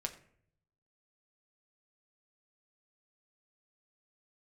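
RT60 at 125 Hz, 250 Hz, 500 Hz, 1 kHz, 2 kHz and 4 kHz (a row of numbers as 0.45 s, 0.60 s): 1.2 s, 0.80 s, 0.70 s, 0.55 s, 0.55 s, 0.35 s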